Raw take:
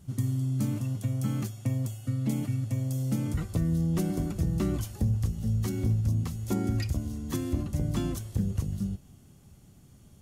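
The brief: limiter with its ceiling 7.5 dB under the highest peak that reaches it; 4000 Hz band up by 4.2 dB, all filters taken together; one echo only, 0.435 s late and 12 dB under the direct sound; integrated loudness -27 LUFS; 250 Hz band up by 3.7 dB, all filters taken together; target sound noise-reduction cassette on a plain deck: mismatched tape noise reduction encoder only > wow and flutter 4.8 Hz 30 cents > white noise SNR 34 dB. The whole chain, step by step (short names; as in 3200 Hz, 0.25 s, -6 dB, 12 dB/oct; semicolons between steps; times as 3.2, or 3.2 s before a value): bell 250 Hz +5 dB; bell 4000 Hz +5.5 dB; limiter -22 dBFS; echo 0.435 s -12 dB; mismatched tape noise reduction encoder only; wow and flutter 4.8 Hz 30 cents; white noise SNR 34 dB; gain +3.5 dB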